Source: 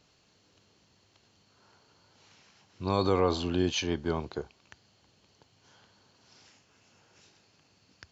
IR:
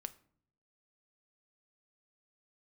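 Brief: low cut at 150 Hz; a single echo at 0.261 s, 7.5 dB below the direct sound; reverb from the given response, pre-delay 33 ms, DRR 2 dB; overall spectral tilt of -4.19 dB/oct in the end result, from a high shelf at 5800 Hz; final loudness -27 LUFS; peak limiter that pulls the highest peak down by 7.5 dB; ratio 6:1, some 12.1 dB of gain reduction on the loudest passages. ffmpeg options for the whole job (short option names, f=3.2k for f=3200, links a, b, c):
-filter_complex "[0:a]highpass=150,highshelf=f=5.8k:g=4,acompressor=threshold=-35dB:ratio=6,alimiter=level_in=8dB:limit=-24dB:level=0:latency=1,volume=-8dB,aecho=1:1:261:0.422,asplit=2[a][b];[1:a]atrim=start_sample=2205,adelay=33[c];[b][c]afir=irnorm=-1:irlink=0,volume=1.5dB[d];[a][d]amix=inputs=2:normalize=0,volume=14.5dB"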